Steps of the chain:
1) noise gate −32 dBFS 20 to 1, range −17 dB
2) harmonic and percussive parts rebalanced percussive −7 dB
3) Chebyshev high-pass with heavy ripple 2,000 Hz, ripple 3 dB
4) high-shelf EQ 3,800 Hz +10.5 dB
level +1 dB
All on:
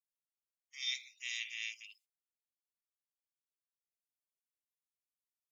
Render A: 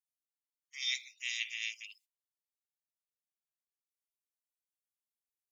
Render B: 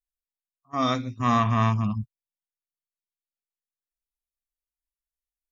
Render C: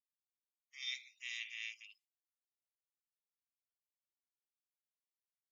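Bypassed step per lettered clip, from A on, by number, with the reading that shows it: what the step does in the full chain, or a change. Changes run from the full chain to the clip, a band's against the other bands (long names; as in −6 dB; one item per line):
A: 2, change in integrated loudness +3.0 LU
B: 3, change in crest factor −6.0 dB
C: 4, change in integrated loudness −4.0 LU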